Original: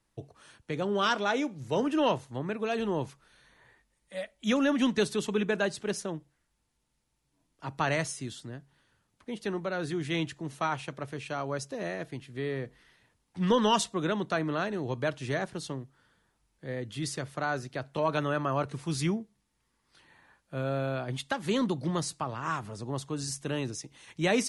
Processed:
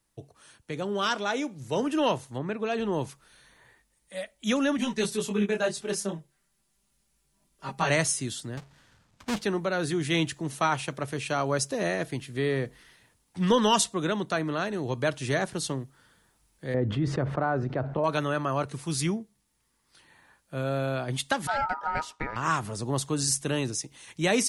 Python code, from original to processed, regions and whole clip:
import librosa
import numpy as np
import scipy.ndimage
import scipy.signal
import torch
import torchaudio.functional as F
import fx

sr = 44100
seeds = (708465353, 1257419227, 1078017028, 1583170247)

y = fx.chain(x, sr, fx.lowpass(hz=10000.0, slope=12),
    fx.high_shelf(hz=5600.0, db=-10.5), at=(2.38, 2.93))
y = fx.chain(y, sr, fx.comb(ms=5.1, depth=0.7),
    fx.detune_double(cents=13), at=(4.77, 7.9))
y = fx.chain(y, sr, fx.halfwave_hold(),
    fx.lowpass(hz=6400.0, slope=12),
    fx.peak_eq(hz=390.0, db=-5.0, octaves=0.78), at=(8.57, 9.44))
y = fx.chain(y, sr, fx.lowpass(hz=1100.0, slope=12),
    fx.env_flatten(amount_pct=70), at=(16.74, 18.04))
y = fx.chain(y, sr, fx.ring_mod(carrier_hz=1100.0),
    fx.spacing_loss(db_at_10k=25), at=(21.47, 22.36))
y = fx.high_shelf(y, sr, hz=7100.0, db=11.0)
y = fx.rider(y, sr, range_db=10, speed_s=2.0)
y = F.gain(torch.from_numpy(y), 2.0).numpy()